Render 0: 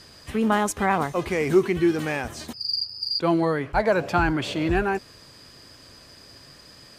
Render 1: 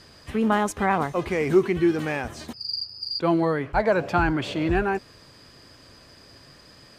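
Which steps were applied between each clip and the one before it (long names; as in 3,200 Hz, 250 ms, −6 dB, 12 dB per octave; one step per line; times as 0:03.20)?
high-shelf EQ 4,600 Hz −6.5 dB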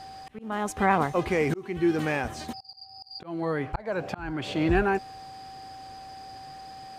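steady tone 770 Hz −41 dBFS
volume swells 464 ms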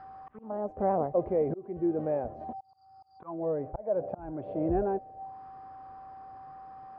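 envelope-controlled low-pass 600–1,500 Hz down, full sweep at −29.5 dBFS
level −8 dB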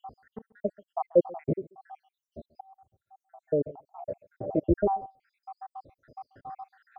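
time-frequency cells dropped at random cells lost 81%
single-tap delay 136 ms −23.5 dB
level +8 dB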